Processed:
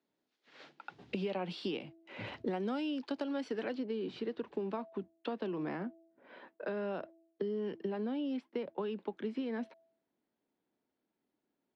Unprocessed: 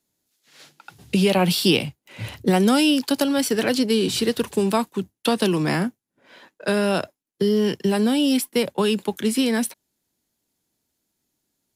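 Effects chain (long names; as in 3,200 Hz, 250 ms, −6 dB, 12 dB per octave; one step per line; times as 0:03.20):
three-way crossover with the lows and the highs turned down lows −19 dB, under 210 Hz, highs −13 dB, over 5,800 Hz
hum removal 330.1 Hz, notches 2
downward compressor 4 to 1, threshold −35 dBFS, peak gain reduction 16.5 dB
head-to-tape spacing loss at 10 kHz 25 dB, from 0:03.73 at 10 kHz 40 dB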